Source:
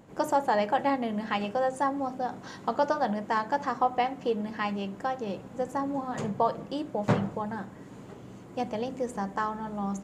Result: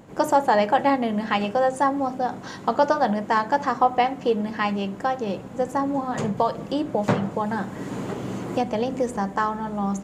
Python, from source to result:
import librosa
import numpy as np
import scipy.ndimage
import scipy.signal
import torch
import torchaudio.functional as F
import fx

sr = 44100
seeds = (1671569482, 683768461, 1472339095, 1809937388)

y = fx.band_squash(x, sr, depth_pct=70, at=(6.37, 9.17))
y = F.gain(torch.from_numpy(y), 6.5).numpy()